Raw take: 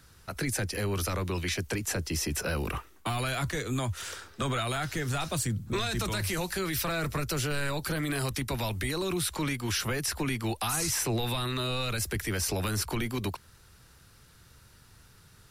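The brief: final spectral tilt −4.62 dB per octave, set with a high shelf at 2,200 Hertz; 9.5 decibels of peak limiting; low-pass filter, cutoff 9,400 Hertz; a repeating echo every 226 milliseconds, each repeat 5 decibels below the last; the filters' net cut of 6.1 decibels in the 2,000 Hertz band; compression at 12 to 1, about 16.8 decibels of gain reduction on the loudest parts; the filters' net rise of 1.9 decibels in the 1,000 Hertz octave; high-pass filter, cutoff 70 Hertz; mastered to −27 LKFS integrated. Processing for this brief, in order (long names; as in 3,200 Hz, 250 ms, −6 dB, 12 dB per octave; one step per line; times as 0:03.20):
high-pass filter 70 Hz
low-pass filter 9,400 Hz
parametric band 1,000 Hz +6 dB
parametric band 2,000 Hz −8.5 dB
high-shelf EQ 2,200 Hz −4 dB
downward compressor 12 to 1, threshold −44 dBFS
brickwall limiter −42 dBFS
repeating echo 226 ms, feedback 56%, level −5 dB
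level +22.5 dB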